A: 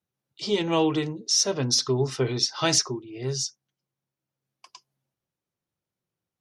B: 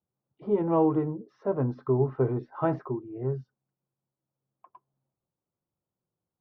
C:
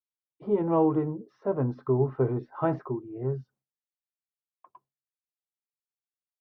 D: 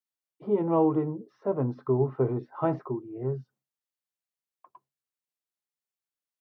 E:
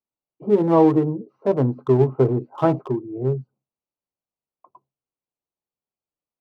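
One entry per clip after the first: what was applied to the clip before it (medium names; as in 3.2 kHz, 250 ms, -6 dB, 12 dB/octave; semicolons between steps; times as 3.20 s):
low-pass 1.2 kHz 24 dB/octave
expander -56 dBFS
high-pass 98 Hz; dynamic bell 1.6 kHz, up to -6 dB, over -58 dBFS, Q 5.7
local Wiener filter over 25 samples; trim +8.5 dB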